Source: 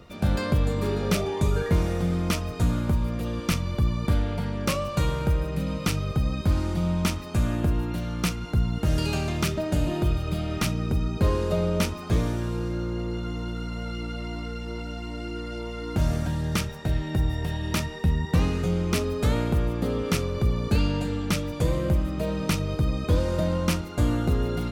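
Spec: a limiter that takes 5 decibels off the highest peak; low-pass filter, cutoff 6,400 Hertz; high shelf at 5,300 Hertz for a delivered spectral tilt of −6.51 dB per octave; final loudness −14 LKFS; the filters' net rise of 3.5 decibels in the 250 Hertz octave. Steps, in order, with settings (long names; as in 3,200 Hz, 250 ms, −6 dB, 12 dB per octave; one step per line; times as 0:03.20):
low-pass filter 6,400 Hz
parametric band 250 Hz +5 dB
high-shelf EQ 5,300 Hz +8 dB
level +12 dB
brickwall limiter −2 dBFS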